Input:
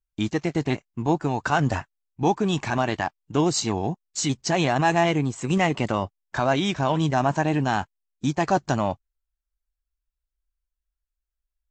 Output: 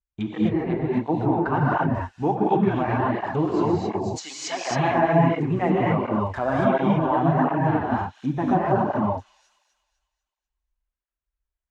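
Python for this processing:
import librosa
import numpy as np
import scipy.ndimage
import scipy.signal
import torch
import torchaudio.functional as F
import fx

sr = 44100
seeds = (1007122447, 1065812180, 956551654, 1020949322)

p1 = fx.wiener(x, sr, points=9)
p2 = fx.highpass(p1, sr, hz=750.0, slope=12, at=(3.89, 4.71))
p3 = p2 + fx.echo_wet_highpass(p2, sr, ms=247, feedback_pct=41, hz=3600.0, wet_db=-12.0, dry=0)
p4 = fx.env_lowpass_down(p3, sr, base_hz=1500.0, full_db=-22.0)
p5 = fx.rev_gated(p4, sr, seeds[0], gate_ms=290, shape='rising', drr_db=-4.5)
y = fx.flanger_cancel(p5, sr, hz=1.4, depth_ms=7.7)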